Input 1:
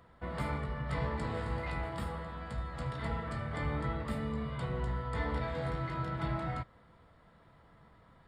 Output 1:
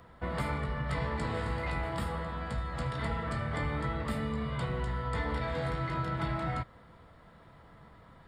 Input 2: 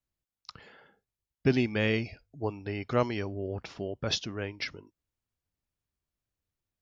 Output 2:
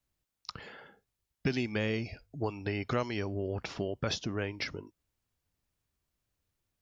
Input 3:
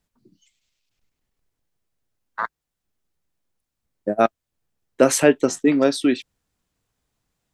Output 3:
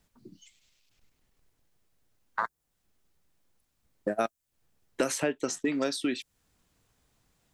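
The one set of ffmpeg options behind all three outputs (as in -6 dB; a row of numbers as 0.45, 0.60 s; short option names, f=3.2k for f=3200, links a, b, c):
-filter_complex "[0:a]acrossover=split=1300|6600[a][b][c];[a]acompressor=threshold=-36dB:ratio=4[d];[b]acompressor=threshold=-44dB:ratio=4[e];[c]acompressor=threshold=-48dB:ratio=4[f];[d][e][f]amix=inputs=3:normalize=0,volume=5.5dB"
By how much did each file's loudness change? +2.5, -3.5, -11.5 LU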